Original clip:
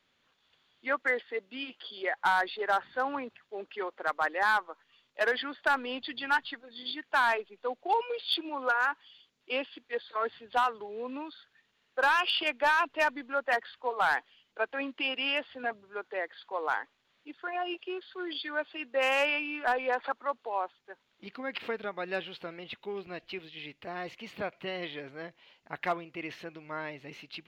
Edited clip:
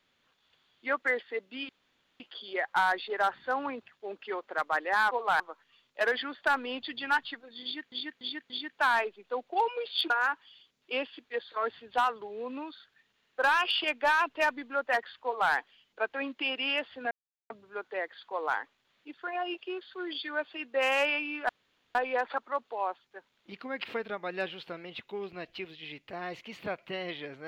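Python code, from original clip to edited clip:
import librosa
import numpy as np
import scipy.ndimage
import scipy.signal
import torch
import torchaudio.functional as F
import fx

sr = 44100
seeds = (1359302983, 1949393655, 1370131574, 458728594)

y = fx.edit(x, sr, fx.insert_room_tone(at_s=1.69, length_s=0.51),
    fx.repeat(start_s=6.83, length_s=0.29, count=4),
    fx.cut(start_s=8.43, length_s=0.26),
    fx.duplicate(start_s=13.83, length_s=0.29, to_s=4.6),
    fx.insert_silence(at_s=15.7, length_s=0.39),
    fx.insert_room_tone(at_s=19.69, length_s=0.46), tone=tone)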